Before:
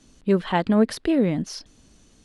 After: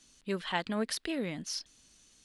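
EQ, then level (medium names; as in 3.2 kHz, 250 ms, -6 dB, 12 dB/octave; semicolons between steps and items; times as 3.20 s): tilt shelf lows -8 dB, about 1.2 kHz; -8.0 dB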